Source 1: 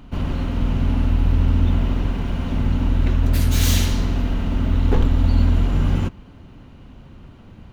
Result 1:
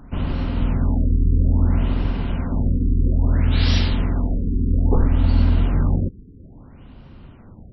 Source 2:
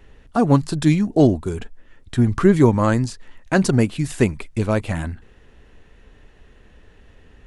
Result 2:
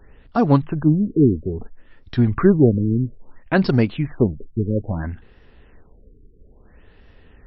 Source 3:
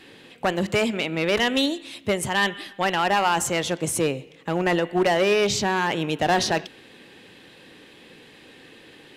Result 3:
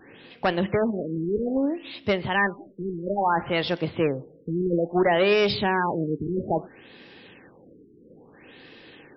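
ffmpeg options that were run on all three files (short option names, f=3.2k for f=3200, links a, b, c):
-af "afftfilt=real='re*lt(b*sr/1024,450*pow(5800/450,0.5+0.5*sin(2*PI*0.6*pts/sr)))':imag='im*lt(b*sr/1024,450*pow(5800/450,0.5+0.5*sin(2*PI*0.6*pts/sr)))':win_size=1024:overlap=0.75"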